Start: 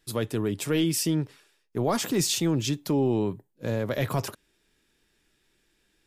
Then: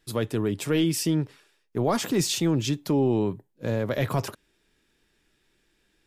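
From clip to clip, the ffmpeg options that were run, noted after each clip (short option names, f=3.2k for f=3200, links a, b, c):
-af "highshelf=f=5.1k:g=-4.5,volume=1.5dB"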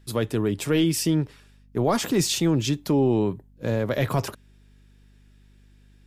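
-af "aeval=exprs='val(0)+0.00178*(sin(2*PI*50*n/s)+sin(2*PI*2*50*n/s)/2+sin(2*PI*3*50*n/s)/3+sin(2*PI*4*50*n/s)/4+sin(2*PI*5*50*n/s)/5)':c=same,volume=2dB"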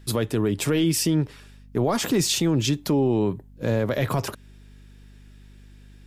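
-af "alimiter=limit=-20dB:level=0:latency=1:release=262,volume=6.5dB"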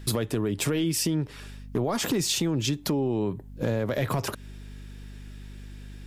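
-af "acompressor=threshold=-30dB:ratio=5,asoftclip=type=hard:threshold=-24dB,volume=6dB"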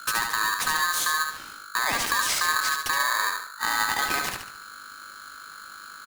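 -af "aecho=1:1:72|144|216|288|360:0.562|0.219|0.0855|0.0334|0.013,aeval=exprs='val(0)*sgn(sin(2*PI*1400*n/s))':c=same"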